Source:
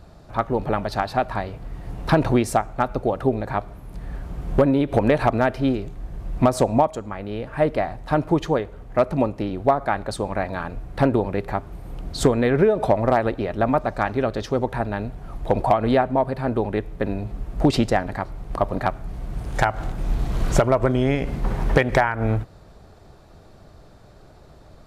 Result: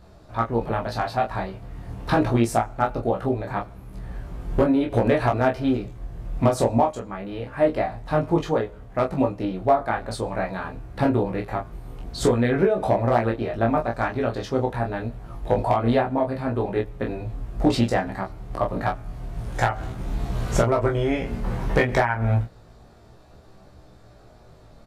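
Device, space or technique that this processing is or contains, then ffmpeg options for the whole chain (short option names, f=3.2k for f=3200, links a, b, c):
double-tracked vocal: -filter_complex "[0:a]asplit=2[a][b];[b]adelay=26,volume=-4.5dB[c];[a][c]amix=inputs=2:normalize=0,flanger=delay=15.5:depth=2.3:speed=0.55"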